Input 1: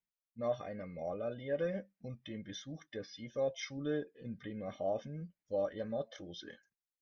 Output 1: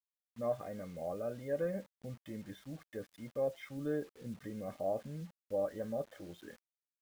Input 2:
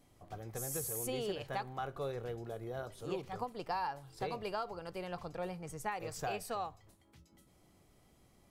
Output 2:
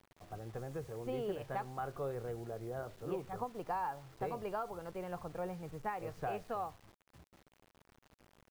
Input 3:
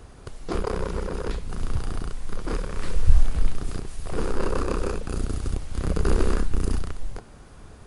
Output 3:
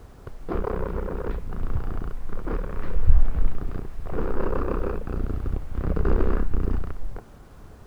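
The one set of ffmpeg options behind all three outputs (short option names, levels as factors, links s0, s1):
-af "lowpass=1700,acrusher=bits=9:mix=0:aa=0.000001"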